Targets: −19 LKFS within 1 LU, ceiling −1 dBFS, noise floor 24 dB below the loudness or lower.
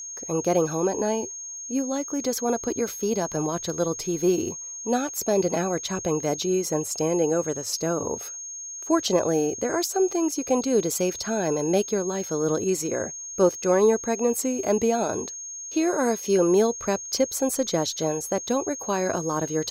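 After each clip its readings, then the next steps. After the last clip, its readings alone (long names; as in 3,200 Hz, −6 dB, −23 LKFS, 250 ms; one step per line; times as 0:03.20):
interfering tone 6,500 Hz; level of the tone −34 dBFS; integrated loudness −25.0 LKFS; sample peak −9.5 dBFS; target loudness −19.0 LKFS
→ notch filter 6,500 Hz, Q 30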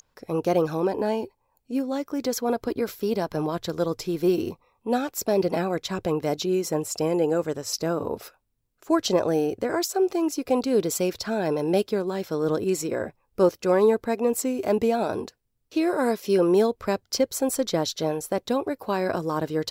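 interfering tone none found; integrated loudness −25.5 LKFS; sample peak −10.0 dBFS; target loudness −19.0 LKFS
→ level +6.5 dB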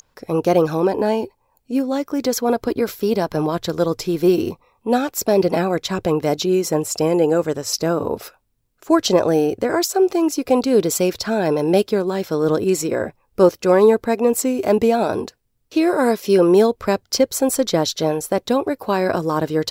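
integrated loudness −19.0 LKFS; sample peak −3.5 dBFS; background noise floor −66 dBFS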